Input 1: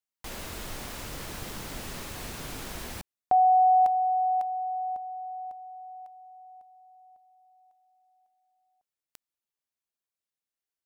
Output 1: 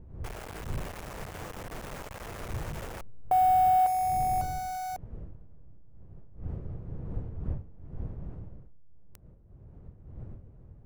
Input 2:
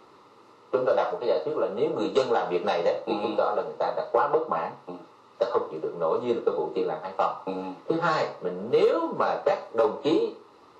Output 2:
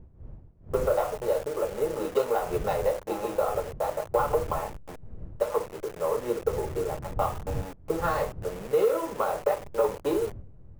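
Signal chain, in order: level-crossing sampler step -31.5 dBFS; wind noise 120 Hz -37 dBFS; ten-band EQ 250 Hz -5 dB, 500 Hz +3 dB, 4000 Hz -6 dB; gain -3 dB

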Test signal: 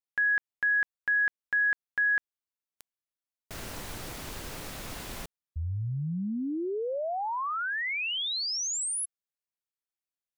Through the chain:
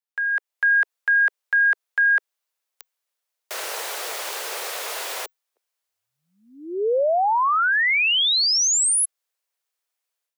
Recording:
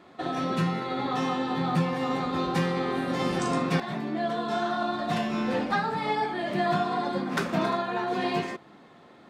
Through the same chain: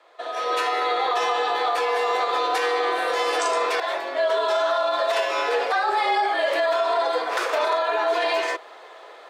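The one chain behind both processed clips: AGC gain up to 12 dB; steep high-pass 460 Hz 48 dB/oct; limiter -14 dBFS; frequency shift -41 Hz

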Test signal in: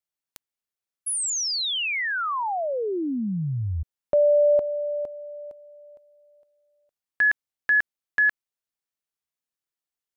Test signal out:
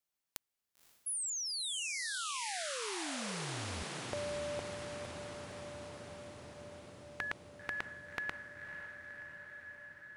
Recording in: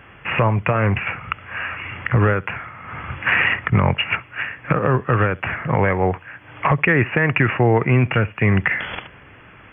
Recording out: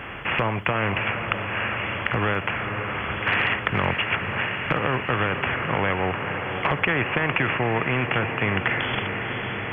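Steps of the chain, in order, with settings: diffused feedback echo 0.532 s, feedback 68%, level -13 dB; spectral compressor 2:1

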